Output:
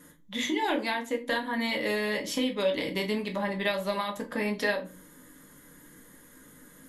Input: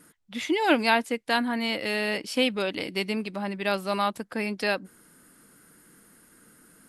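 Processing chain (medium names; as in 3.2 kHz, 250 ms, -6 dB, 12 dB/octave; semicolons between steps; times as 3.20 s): rippled EQ curve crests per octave 1.1, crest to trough 9 dB; compression 6:1, threshold -28 dBFS, peak gain reduction 13.5 dB; simulated room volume 170 m³, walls furnished, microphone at 1.3 m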